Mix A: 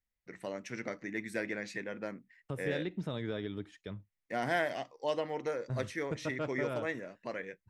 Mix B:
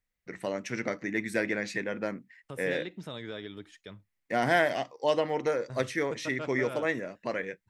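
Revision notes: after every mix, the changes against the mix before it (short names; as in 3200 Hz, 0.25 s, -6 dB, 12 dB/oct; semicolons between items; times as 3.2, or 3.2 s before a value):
first voice +7.0 dB; second voice: add tilt +2 dB/oct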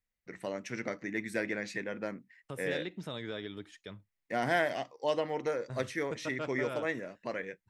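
first voice -4.5 dB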